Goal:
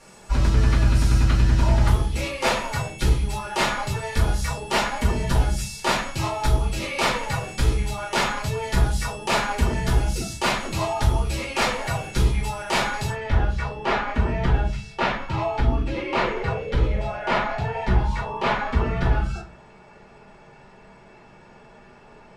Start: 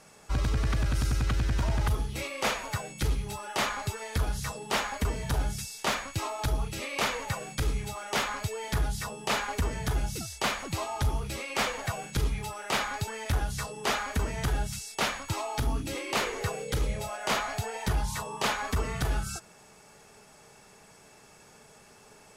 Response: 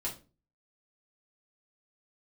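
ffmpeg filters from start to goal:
-filter_complex "[0:a]asetnsamples=nb_out_samples=441:pad=0,asendcmd='13.1 lowpass f 2700',lowpass=11000[link_01];[1:a]atrim=start_sample=2205[link_02];[link_01][link_02]afir=irnorm=-1:irlink=0,volume=5dB"

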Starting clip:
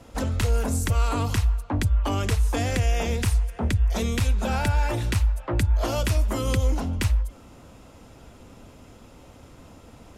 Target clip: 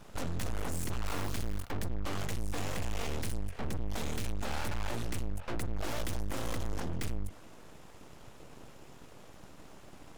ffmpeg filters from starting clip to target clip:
ffmpeg -i in.wav -filter_complex "[0:a]aeval=exprs='(tanh(31.6*val(0)+0.55)-tanh(0.55))/31.6':channel_layout=same,asettb=1/sr,asplit=3[link_01][link_02][link_03];[link_01]atrim=end=1.064[link_04];[link_02]atrim=start=1.06:end=1.71,asetpts=PTS-STARTPTS,afade=type=in:duration=0.004:curve=qsin,afade=type=out:start_time=0.646:duration=0.004:curve=qsin,acrusher=bits=8:dc=4:mix=0:aa=0.000001[link_05];[link_03]atrim=start=1.706[link_06];[link_04][link_05]acrossfade=duration=0.004:curve1=hsin:curve2=qsin[link_07];[link_07][link_06]acrossfade=duration=0.004:curve1=qsin:curve2=hsin,aeval=exprs='abs(val(0))':channel_layout=same" out.wav

